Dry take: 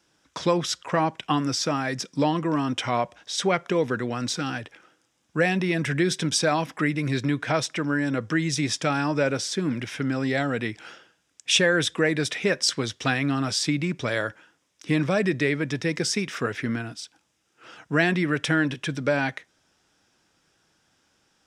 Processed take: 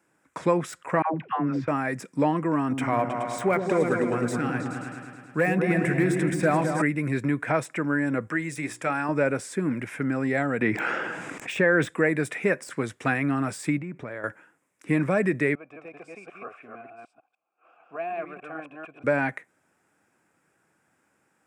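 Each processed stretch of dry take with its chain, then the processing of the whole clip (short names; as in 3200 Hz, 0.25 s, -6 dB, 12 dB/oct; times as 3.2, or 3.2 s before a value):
1.02–1.68 air absorption 310 m + dispersion lows, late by 0.121 s, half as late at 500 Hz
2.6–6.82 hard clip -15 dBFS + repeats that get brighter 0.106 s, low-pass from 400 Hz, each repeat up 2 oct, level -3 dB
8.27–9.09 low shelf 330 Hz -8.5 dB + notches 60/120/180/240/300/360/420/480 Hz
10.61–11.89 HPF 120 Hz + air absorption 100 m + fast leveller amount 70%
13.78–14.24 LPF 1800 Hz 6 dB/oct + compressor 4:1, threshold -32 dBFS
15.55–19.04 reverse delay 0.15 s, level -0.5 dB + vowel filter a
whole clip: HPF 120 Hz; de-esser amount 55%; band shelf 4300 Hz -15.5 dB 1.3 oct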